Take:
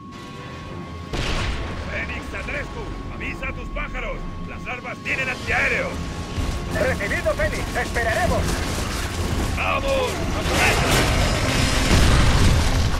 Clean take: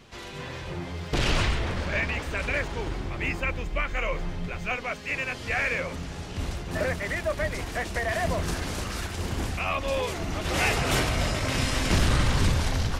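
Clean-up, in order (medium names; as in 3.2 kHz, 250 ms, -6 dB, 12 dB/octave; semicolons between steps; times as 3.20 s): band-stop 1.1 kHz, Q 30; noise print and reduce 6 dB; trim 0 dB, from 5.05 s -6.5 dB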